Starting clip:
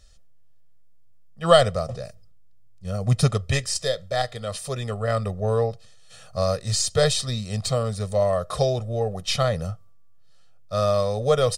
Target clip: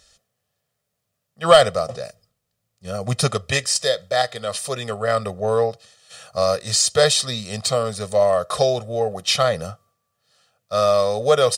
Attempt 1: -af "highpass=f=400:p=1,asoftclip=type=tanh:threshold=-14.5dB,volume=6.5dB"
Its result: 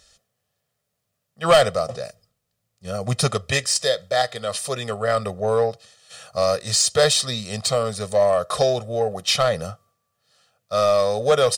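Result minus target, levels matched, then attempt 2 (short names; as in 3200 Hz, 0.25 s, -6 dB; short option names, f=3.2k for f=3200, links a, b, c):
soft clip: distortion +8 dB
-af "highpass=f=400:p=1,asoftclip=type=tanh:threshold=-7.5dB,volume=6.5dB"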